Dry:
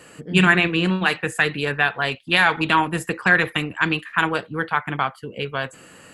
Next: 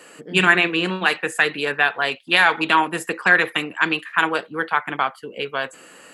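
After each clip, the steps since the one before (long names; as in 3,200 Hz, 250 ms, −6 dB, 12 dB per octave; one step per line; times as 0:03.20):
high-pass filter 290 Hz 12 dB per octave
level +1.5 dB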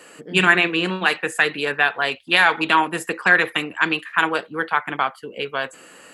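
parametric band 85 Hz +9 dB 0.21 octaves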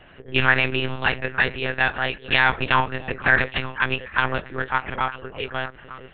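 echo through a band-pass that steps 301 ms, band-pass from 200 Hz, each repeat 1.4 octaves, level −7.5 dB
one-pitch LPC vocoder at 8 kHz 130 Hz
level −2.5 dB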